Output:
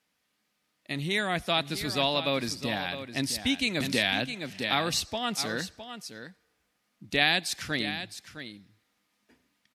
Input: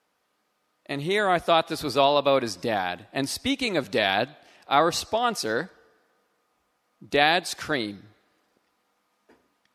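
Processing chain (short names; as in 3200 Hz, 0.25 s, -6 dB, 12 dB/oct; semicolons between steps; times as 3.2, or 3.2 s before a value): band shelf 690 Hz -9.5 dB 2.4 oct; echo 0.66 s -11 dB; 3.8–4.94 three-band squash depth 70%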